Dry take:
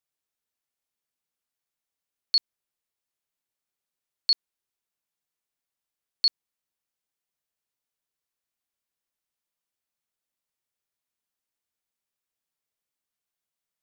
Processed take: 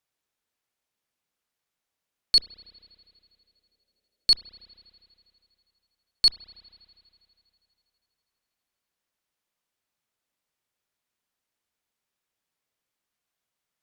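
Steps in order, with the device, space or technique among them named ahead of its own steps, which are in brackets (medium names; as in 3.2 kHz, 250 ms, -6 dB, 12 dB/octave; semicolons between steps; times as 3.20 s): 2.36–4.32 s: ten-band graphic EQ 250 Hz +6 dB, 500 Hz +11 dB, 1 kHz -9 dB; tube preamp driven hard (valve stage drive 12 dB, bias 0.35; treble shelf 5.9 kHz -7 dB); spring tank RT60 2.8 s, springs 31 ms, chirp 50 ms, DRR 14 dB; trim +7.5 dB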